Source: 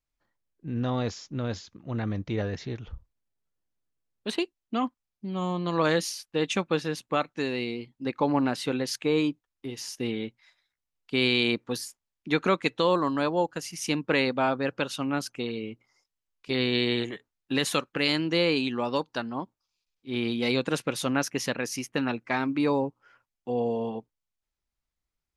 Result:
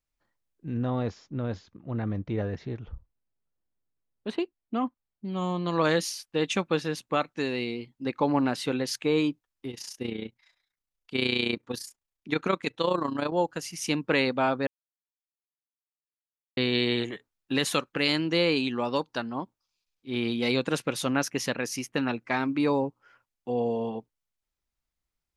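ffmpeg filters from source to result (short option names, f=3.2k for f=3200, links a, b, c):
-filter_complex "[0:a]asettb=1/sr,asplit=3[a][b][c];[a]atrim=end=0.774[d];[b]atrim=start=0.77:end=5.25,asetpts=PTS-STARTPTS,afade=t=in:d=0.004:c=qsin,afade=t=out:st=4.476:d=0.004:c=qsin,lowpass=f=1.4k:p=1[e];[c]atrim=start=5.246[f];[d][e]acrossfade=d=0.004:c1=hsin:c2=qsin[g];[g][f]acrossfade=d=0.004:c1=qsin:c2=hsin,asettb=1/sr,asplit=3[h][i][j];[h]atrim=end=9.714[k];[i]atrim=start=9.71:end=13.32,asetpts=PTS-STARTPTS,afade=t=in:d=0.004:c=qsin,afade=t=out:st=3.606:d=0.004:c=qsin,tremolo=f=29:d=0.71[l];[j]atrim=start=13.316[m];[k][l]acrossfade=d=0.004:c1=hsin:c2=qsin[n];[n][m]acrossfade=d=0.004:c1=qsin:c2=hsin,asplit=3[o][p][q];[o]atrim=end=14.67,asetpts=PTS-STARTPTS,afade=t=out:st=14.666:d=0.004:c=hsin[r];[p]atrim=start=14.67:end=16.57,asetpts=PTS-STARTPTS,volume=0[s];[q]atrim=start=16.57,asetpts=PTS-STARTPTS,afade=t=in:d=0.004:c=hsin[t];[r][s][t]concat=n=3:v=0:a=1"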